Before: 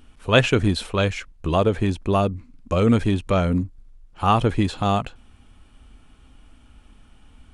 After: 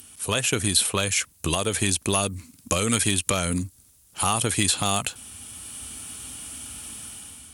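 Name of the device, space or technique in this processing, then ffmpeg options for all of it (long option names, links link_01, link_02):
FM broadcast chain: -filter_complex "[0:a]highpass=frequency=71:width=0.5412,highpass=frequency=71:width=1.3066,dynaudnorm=framelen=150:gausssize=7:maxgain=9.5dB,acrossover=split=1300|3500|7300[link_01][link_02][link_03][link_04];[link_01]acompressor=threshold=-21dB:ratio=4[link_05];[link_02]acompressor=threshold=-30dB:ratio=4[link_06];[link_03]acompressor=threshold=-46dB:ratio=4[link_07];[link_04]acompressor=threshold=-49dB:ratio=4[link_08];[link_05][link_06][link_07][link_08]amix=inputs=4:normalize=0,aemphasis=mode=production:type=75fm,alimiter=limit=-10.5dB:level=0:latency=1:release=176,asoftclip=type=hard:threshold=-12dB,lowpass=frequency=15000:width=0.5412,lowpass=frequency=15000:width=1.3066,aemphasis=mode=production:type=75fm"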